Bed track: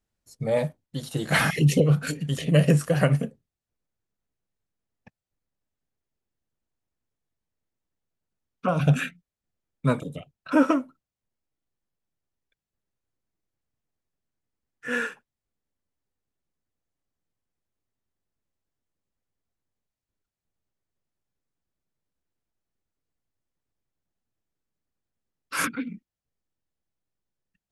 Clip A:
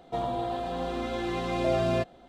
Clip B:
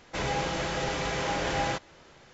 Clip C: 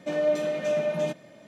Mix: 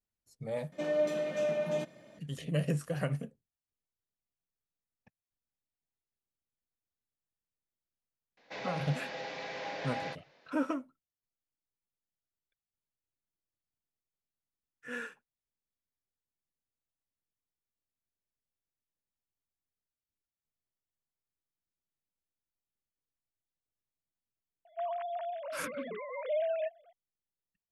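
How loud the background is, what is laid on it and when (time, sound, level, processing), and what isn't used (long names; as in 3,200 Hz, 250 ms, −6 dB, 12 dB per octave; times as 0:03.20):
bed track −12.5 dB
0:00.72: overwrite with C −5.5 dB
0:08.37: mix in B −6.5 dB + loudspeaker in its box 320–4,700 Hz, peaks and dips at 360 Hz −10 dB, 950 Hz −4 dB, 1,300 Hz −10 dB, 3,100 Hz −6 dB
0:24.65: mix in A −7 dB + three sine waves on the formant tracks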